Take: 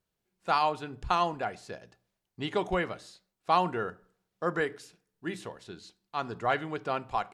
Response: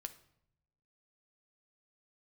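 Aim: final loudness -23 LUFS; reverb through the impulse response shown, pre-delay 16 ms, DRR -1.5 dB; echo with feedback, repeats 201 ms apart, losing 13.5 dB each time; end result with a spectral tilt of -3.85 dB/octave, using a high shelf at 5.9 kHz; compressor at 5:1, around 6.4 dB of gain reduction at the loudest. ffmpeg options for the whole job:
-filter_complex "[0:a]highshelf=f=5900:g=-5.5,acompressor=threshold=0.0398:ratio=5,aecho=1:1:201|402:0.211|0.0444,asplit=2[s0][s1];[1:a]atrim=start_sample=2205,adelay=16[s2];[s1][s2]afir=irnorm=-1:irlink=0,volume=1.88[s3];[s0][s3]amix=inputs=2:normalize=0,volume=2.82"

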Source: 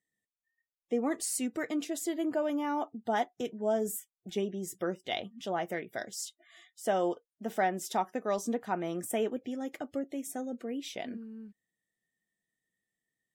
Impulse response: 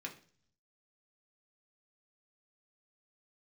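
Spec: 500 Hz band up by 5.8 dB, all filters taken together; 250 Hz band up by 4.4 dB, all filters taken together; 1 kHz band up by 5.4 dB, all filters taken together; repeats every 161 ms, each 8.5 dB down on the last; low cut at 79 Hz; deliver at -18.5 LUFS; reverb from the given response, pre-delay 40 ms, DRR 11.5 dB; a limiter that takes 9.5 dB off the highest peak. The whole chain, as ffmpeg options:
-filter_complex "[0:a]highpass=79,equalizer=f=250:t=o:g=3.5,equalizer=f=500:t=o:g=5,equalizer=f=1000:t=o:g=5,alimiter=limit=0.0794:level=0:latency=1,aecho=1:1:161|322|483|644:0.376|0.143|0.0543|0.0206,asplit=2[s0][s1];[1:a]atrim=start_sample=2205,adelay=40[s2];[s1][s2]afir=irnorm=-1:irlink=0,volume=0.299[s3];[s0][s3]amix=inputs=2:normalize=0,volume=4.73"

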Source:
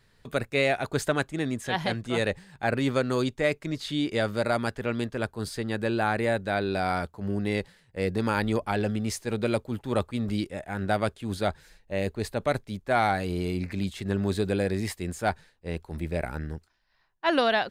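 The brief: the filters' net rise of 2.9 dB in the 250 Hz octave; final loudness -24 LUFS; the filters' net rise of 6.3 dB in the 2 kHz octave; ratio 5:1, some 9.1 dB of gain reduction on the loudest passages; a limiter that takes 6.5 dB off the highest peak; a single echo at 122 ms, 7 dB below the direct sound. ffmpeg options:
-af "equalizer=f=250:t=o:g=3.5,equalizer=f=2000:t=o:g=8,acompressor=threshold=0.0447:ratio=5,alimiter=limit=0.106:level=0:latency=1,aecho=1:1:122:0.447,volume=2.66"

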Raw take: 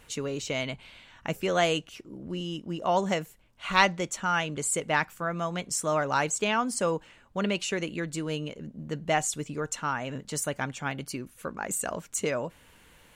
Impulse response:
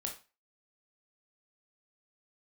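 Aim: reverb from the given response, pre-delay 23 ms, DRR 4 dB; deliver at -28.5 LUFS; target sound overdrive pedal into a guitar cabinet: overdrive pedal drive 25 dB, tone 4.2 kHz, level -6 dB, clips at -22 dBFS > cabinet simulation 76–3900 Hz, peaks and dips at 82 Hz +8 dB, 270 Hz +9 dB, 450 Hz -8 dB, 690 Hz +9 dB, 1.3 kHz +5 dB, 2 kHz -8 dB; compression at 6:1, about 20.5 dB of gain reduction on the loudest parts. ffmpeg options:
-filter_complex "[0:a]acompressor=threshold=0.0126:ratio=6,asplit=2[s0][s1];[1:a]atrim=start_sample=2205,adelay=23[s2];[s1][s2]afir=irnorm=-1:irlink=0,volume=0.631[s3];[s0][s3]amix=inputs=2:normalize=0,asplit=2[s4][s5];[s5]highpass=f=720:p=1,volume=17.8,asoftclip=type=tanh:threshold=0.0794[s6];[s4][s6]amix=inputs=2:normalize=0,lowpass=f=4200:p=1,volume=0.501,highpass=76,equalizer=f=82:t=q:w=4:g=8,equalizer=f=270:t=q:w=4:g=9,equalizer=f=450:t=q:w=4:g=-8,equalizer=f=690:t=q:w=4:g=9,equalizer=f=1300:t=q:w=4:g=5,equalizer=f=2000:t=q:w=4:g=-8,lowpass=f=3900:w=0.5412,lowpass=f=3900:w=1.3066,volume=1.19"

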